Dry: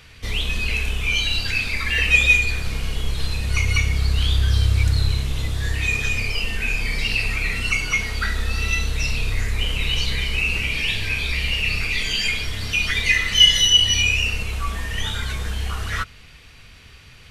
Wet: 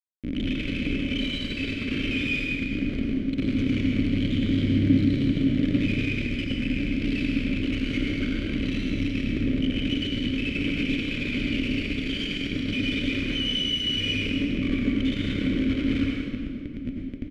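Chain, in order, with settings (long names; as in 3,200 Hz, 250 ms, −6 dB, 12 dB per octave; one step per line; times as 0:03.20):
phaser with its sweep stopped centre 400 Hz, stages 8
comb filter 2 ms, depth 58%
automatic gain control gain up to 9.5 dB
comparator with hysteresis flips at −28.5 dBFS
formant filter i
spectral tilt −3 dB per octave
hollow resonant body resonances 570/2,600 Hz, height 8 dB
convolution reverb RT60 1.7 s, pre-delay 81 ms, DRR −1.5 dB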